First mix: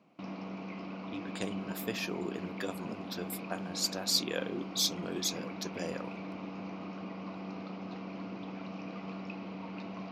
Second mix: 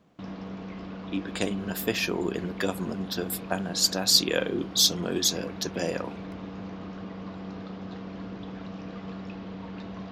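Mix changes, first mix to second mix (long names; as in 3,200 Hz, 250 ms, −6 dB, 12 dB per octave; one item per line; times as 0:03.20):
speech +9.0 dB
background: remove loudspeaker in its box 210–6,100 Hz, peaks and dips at 450 Hz −6 dB, 1,700 Hz −10 dB, 2,400 Hz +7 dB, 3,500 Hz −8 dB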